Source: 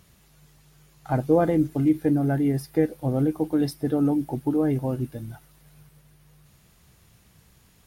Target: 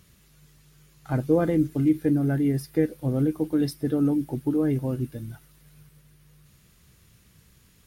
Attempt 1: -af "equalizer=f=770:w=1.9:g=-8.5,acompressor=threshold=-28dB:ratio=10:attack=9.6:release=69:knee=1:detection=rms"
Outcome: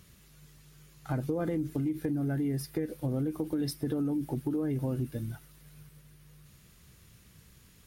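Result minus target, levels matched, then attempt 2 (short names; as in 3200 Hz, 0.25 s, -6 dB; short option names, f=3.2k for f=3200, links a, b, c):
compressor: peak gain reduction +13.5 dB
-af "equalizer=f=770:w=1.9:g=-8.5"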